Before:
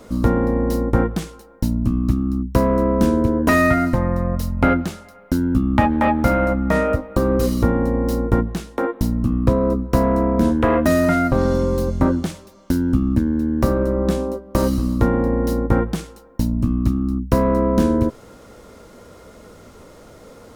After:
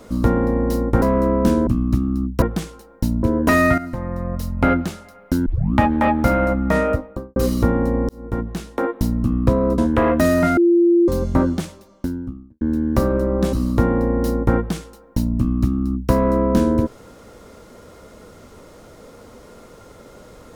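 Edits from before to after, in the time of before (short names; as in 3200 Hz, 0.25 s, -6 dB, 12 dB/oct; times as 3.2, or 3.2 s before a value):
1.02–1.83 swap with 2.58–3.23
3.78–4.75 fade in, from -12.5 dB
5.46 tape start 0.28 s
6.88–7.36 studio fade out
8.09–8.67 fade in
9.78–10.44 cut
11.23–11.74 bleep 344 Hz -10.5 dBFS
12.27–13.27 studio fade out
14.19–14.76 cut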